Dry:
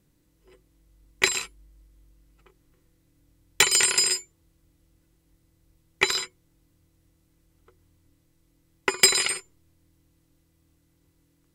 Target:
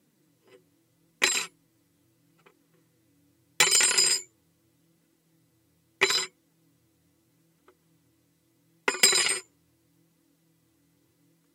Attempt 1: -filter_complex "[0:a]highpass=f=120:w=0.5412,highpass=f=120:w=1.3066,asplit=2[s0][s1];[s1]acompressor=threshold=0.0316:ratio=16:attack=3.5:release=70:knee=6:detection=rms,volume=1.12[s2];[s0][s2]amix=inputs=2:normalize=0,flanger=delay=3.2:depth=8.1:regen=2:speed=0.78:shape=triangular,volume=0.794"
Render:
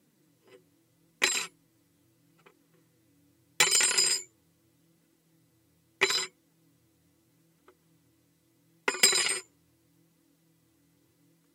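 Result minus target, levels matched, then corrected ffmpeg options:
compression: peak gain reduction +10.5 dB
-filter_complex "[0:a]highpass=f=120:w=0.5412,highpass=f=120:w=1.3066,asplit=2[s0][s1];[s1]acompressor=threshold=0.112:ratio=16:attack=3.5:release=70:knee=6:detection=rms,volume=1.12[s2];[s0][s2]amix=inputs=2:normalize=0,flanger=delay=3.2:depth=8.1:regen=2:speed=0.78:shape=triangular,volume=0.794"

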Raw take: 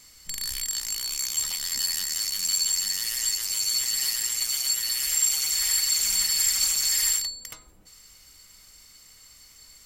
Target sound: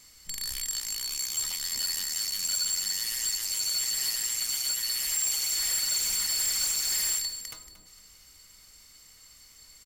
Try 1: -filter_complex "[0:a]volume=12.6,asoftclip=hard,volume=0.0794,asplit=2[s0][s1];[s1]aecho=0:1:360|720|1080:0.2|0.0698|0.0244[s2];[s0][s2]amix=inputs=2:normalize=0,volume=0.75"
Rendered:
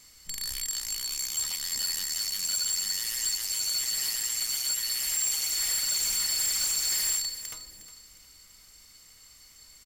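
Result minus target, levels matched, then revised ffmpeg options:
echo 130 ms late
-filter_complex "[0:a]volume=12.6,asoftclip=hard,volume=0.0794,asplit=2[s0][s1];[s1]aecho=0:1:230|460|690:0.2|0.0698|0.0244[s2];[s0][s2]amix=inputs=2:normalize=0,volume=0.75"

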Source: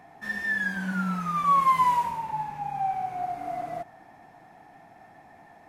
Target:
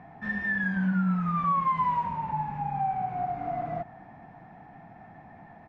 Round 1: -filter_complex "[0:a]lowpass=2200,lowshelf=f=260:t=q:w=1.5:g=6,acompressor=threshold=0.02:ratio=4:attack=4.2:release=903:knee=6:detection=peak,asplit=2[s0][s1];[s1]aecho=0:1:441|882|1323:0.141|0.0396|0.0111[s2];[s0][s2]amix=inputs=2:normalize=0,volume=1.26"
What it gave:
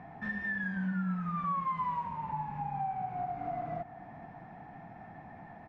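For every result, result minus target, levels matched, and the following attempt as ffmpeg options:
echo-to-direct +11.5 dB; compression: peak gain reduction +7.5 dB
-filter_complex "[0:a]lowpass=2200,lowshelf=f=260:t=q:w=1.5:g=6,acompressor=threshold=0.02:ratio=4:attack=4.2:release=903:knee=6:detection=peak,asplit=2[s0][s1];[s1]aecho=0:1:441|882:0.0376|0.0105[s2];[s0][s2]amix=inputs=2:normalize=0,volume=1.26"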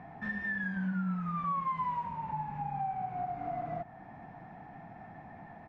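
compression: peak gain reduction +7.5 dB
-filter_complex "[0:a]lowpass=2200,lowshelf=f=260:t=q:w=1.5:g=6,acompressor=threshold=0.0631:ratio=4:attack=4.2:release=903:knee=6:detection=peak,asplit=2[s0][s1];[s1]aecho=0:1:441|882:0.0376|0.0105[s2];[s0][s2]amix=inputs=2:normalize=0,volume=1.26"

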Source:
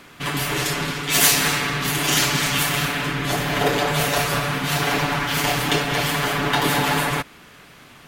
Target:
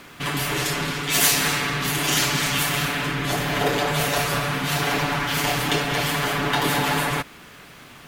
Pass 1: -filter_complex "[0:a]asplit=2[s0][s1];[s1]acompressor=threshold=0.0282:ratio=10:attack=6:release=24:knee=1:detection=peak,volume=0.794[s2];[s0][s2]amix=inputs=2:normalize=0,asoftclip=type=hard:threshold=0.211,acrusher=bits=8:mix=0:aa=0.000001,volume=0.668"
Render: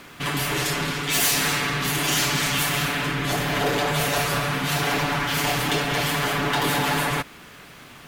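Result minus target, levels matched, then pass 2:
hard clipper: distortion +27 dB
-filter_complex "[0:a]asplit=2[s0][s1];[s1]acompressor=threshold=0.0282:ratio=10:attack=6:release=24:knee=1:detection=peak,volume=0.794[s2];[s0][s2]amix=inputs=2:normalize=0,asoftclip=type=hard:threshold=0.631,acrusher=bits=8:mix=0:aa=0.000001,volume=0.668"

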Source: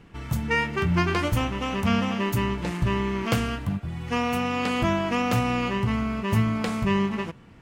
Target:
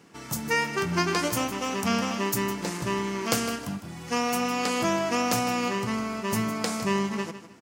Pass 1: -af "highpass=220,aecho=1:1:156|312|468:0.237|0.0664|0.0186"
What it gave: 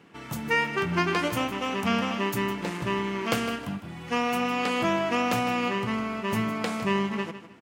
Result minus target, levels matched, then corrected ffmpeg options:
8 kHz band -9.5 dB
-af "highpass=220,highshelf=f=4100:t=q:w=1.5:g=8,aecho=1:1:156|312|468:0.237|0.0664|0.0186"

